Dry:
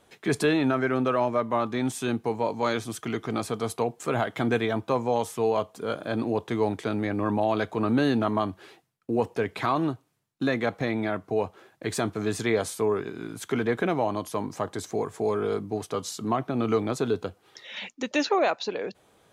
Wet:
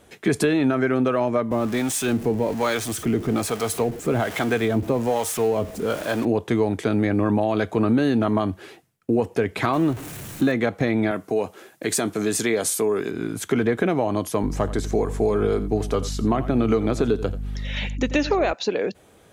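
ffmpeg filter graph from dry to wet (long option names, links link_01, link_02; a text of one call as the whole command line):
ffmpeg -i in.wav -filter_complex "[0:a]asettb=1/sr,asplit=3[link_01][link_02][link_03];[link_01]atrim=end=1.514[link_04];[link_02]atrim=start=1.51:end=6.25,asetpts=PTS-STARTPTS,afade=type=in:duration=0.004:curve=qsin,afade=type=out:start_time=4.736:duration=0.004:curve=qsin,aeval=exprs='val(0)+0.5*0.02*sgn(val(0))':channel_layout=same,acrossover=split=520[link_05][link_06];[link_05]aeval=exprs='val(0)*(1-0.7/2+0.7/2*cos(2*PI*1.2*n/s))':channel_layout=same[link_07];[link_06]aeval=exprs='val(0)*(1-0.7/2-0.7/2*cos(2*PI*1.2*n/s))':channel_layout=same[link_08];[link_07][link_08]amix=inputs=2:normalize=0[link_09];[link_03]atrim=start=6.246[link_10];[link_04][link_09]acrossfade=duration=0.004:curve1=hsin:curve2=qsin[link_11];[link_11][link_10]acrossfade=duration=0.004:curve1=qsin:curve2=hsin,asettb=1/sr,asplit=3[link_12][link_13][link_14];[link_12]atrim=end=9.734[link_15];[link_13]atrim=start=9.73:end=10.52,asetpts=PTS-STARTPTS,afade=type=in:duration=0.004:curve=qsin,afade=type=out:start_time=0.786:duration=0.004:curve=qsin,aeval=exprs='val(0)+0.5*0.0133*sgn(val(0))':channel_layout=same,equalizer=frequency=4900:width=3.9:gain=-4[link_16];[link_14]atrim=start=10.516[link_17];[link_15][link_16]acrossfade=duration=0.004:curve1=hsin:curve2=qsin[link_18];[link_18][link_17]acrossfade=duration=0.004:curve1=qsin:curve2=hsin,asettb=1/sr,asplit=3[link_19][link_20][link_21];[link_19]atrim=end=11.114[link_22];[link_20]atrim=start=11.11:end=13.11,asetpts=PTS-STARTPTS,afade=type=in:duration=0.004:curve=qsin,afade=type=out:start_time=1.996:duration=0.004:curve=qsin,highshelf=frequency=4300:gain=9.5,acompressor=threshold=-30dB:ratio=1.5:attack=3.2:release=140:knee=1:detection=peak,highpass=170[link_23];[link_21]atrim=start=13.106[link_24];[link_22][link_23]acrossfade=duration=0.004:curve1=hsin:curve2=qsin[link_25];[link_25][link_24]acrossfade=duration=0.004:curve1=qsin:curve2=hsin,asettb=1/sr,asplit=3[link_26][link_27][link_28];[link_26]atrim=end=14.434[link_29];[link_27]atrim=start=14.43:end=18.53,asetpts=PTS-STARTPTS,afade=type=in:duration=0.004:curve=qsin,afade=type=out:start_time=4.096:duration=0.004:curve=qsin,acrossover=split=5500[link_30][link_31];[link_31]acompressor=threshold=-48dB:ratio=4:attack=1:release=60[link_32];[link_30][link_32]amix=inputs=2:normalize=0,aeval=exprs='val(0)+0.0112*(sin(2*PI*50*n/s)+sin(2*PI*2*50*n/s)/2+sin(2*PI*3*50*n/s)/3+sin(2*PI*4*50*n/s)/4+sin(2*PI*5*50*n/s)/5)':channel_layout=same,aecho=1:1:86:0.158,atrim=end_sample=180810[link_33];[link_28]atrim=start=18.526[link_34];[link_29][link_33]acrossfade=duration=0.004:curve1=hsin:curve2=qsin[link_35];[link_35][link_34]acrossfade=duration=0.004:curve1=qsin:curve2=hsin,equalizer=frequency=125:width_type=o:width=1:gain=-5,equalizer=frequency=1000:width_type=o:width=1:gain=-5,equalizer=frequency=4000:width_type=o:width=1:gain=-4,acompressor=threshold=-26dB:ratio=6,equalizer=frequency=77:width=0.51:gain=6,volume=8.5dB" out.wav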